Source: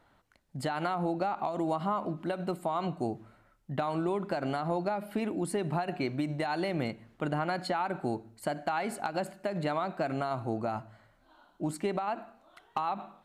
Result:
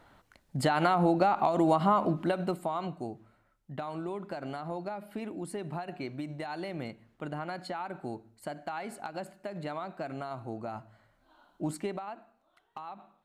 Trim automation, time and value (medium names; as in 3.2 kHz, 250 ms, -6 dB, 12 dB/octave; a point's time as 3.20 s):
2.15 s +6 dB
3.09 s -6 dB
10.59 s -6 dB
11.72 s 0 dB
12.22 s -11 dB